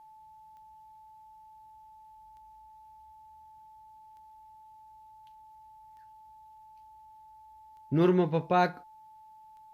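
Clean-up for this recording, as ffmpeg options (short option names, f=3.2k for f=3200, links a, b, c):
-af "adeclick=t=4,bandreject=f=870:w=30"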